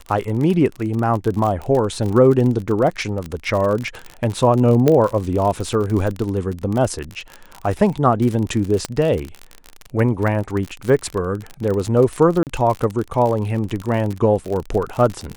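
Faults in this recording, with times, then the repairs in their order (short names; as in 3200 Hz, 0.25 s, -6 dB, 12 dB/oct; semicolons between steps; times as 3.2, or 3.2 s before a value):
crackle 43/s -22 dBFS
4.88 pop -4 dBFS
8.85 pop -8 dBFS
12.43–12.47 gap 38 ms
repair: de-click; interpolate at 12.43, 38 ms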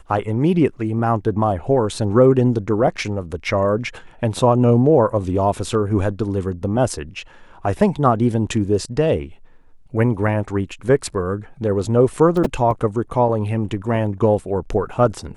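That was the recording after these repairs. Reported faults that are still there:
8.85 pop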